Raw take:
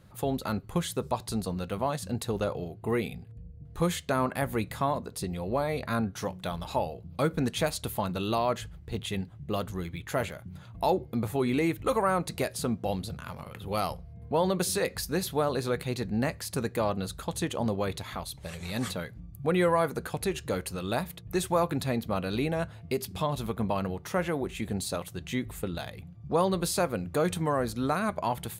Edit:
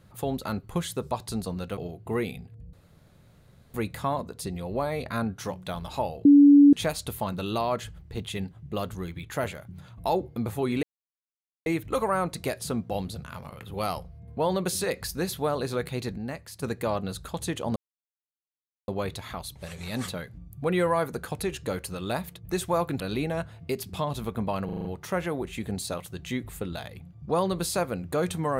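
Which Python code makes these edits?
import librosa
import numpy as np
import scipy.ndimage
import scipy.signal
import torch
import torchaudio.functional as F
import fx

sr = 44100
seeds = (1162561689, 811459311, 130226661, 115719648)

y = fx.edit(x, sr, fx.cut(start_s=1.77, length_s=0.77),
    fx.room_tone_fill(start_s=3.5, length_s=1.01),
    fx.bleep(start_s=7.02, length_s=0.48, hz=286.0, db=-10.5),
    fx.insert_silence(at_s=11.6, length_s=0.83),
    fx.clip_gain(start_s=16.12, length_s=0.45, db=-6.5),
    fx.insert_silence(at_s=17.7, length_s=1.12),
    fx.cut(start_s=21.82, length_s=0.4),
    fx.stutter(start_s=23.87, slice_s=0.04, count=6), tone=tone)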